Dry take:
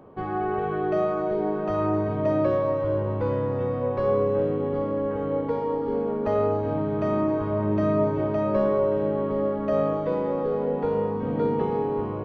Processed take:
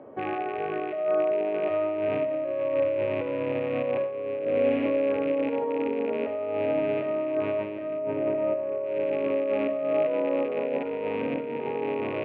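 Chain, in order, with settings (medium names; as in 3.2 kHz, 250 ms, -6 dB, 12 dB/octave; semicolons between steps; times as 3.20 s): rattle on loud lows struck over -33 dBFS, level -26 dBFS; 7.98–8.86 s: treble shelf 2.2 kHz -12 dB; compressor with a negative ratio -27 dBFS, ratio -0.5; peak limiter -19 dBFS, peak gain reduction 5 dB; cabinet simulation 150–3100 Hz, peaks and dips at 180 Hz -10 dB, 280 Hz +5 dB, 590 Hz +9 dB, 1.1 kHz -4 dB, 2 kHz +5 dB; 4.39–4.86 s: flutter echo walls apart 11.8 m, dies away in 1.5 s; reverberation RT60 0.45 s, pre-delay 38 ms, DRR 11.5 dB; trim -2.5 dB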